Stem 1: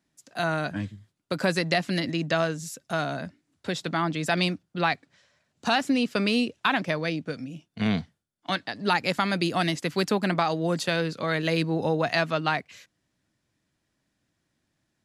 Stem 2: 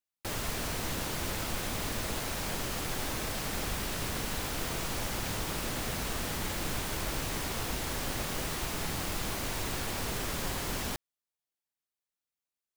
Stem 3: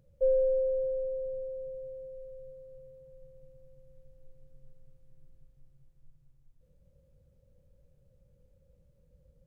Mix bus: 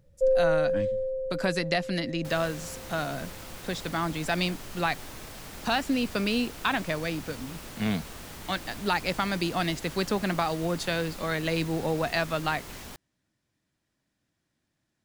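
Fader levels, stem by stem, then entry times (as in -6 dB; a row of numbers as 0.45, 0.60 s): -3.0, -8.0, +3.0 dB; 0.00, 2.00, 0.00 s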